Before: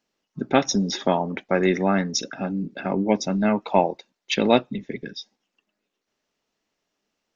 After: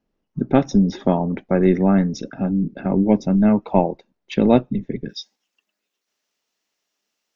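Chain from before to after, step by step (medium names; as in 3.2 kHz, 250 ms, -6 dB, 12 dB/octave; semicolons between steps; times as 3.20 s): tilt EQ -4 dB/octave, from 5.09 s +2.5 dB/octave; trim -2 dB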